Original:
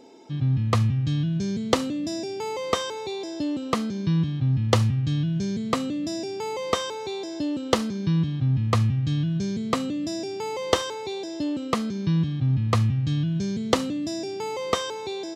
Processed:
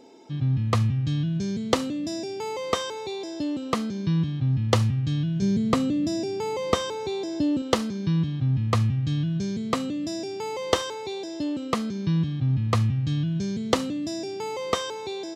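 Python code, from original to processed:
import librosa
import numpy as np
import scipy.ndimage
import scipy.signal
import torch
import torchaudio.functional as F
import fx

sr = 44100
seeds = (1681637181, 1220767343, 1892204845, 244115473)

y = fx.low_shelf(x, sr, hz=340.0, db=8.5, at=(5.42, 7.62))
y = F.gain(torch.from_numpy(y), -1.0).numpy()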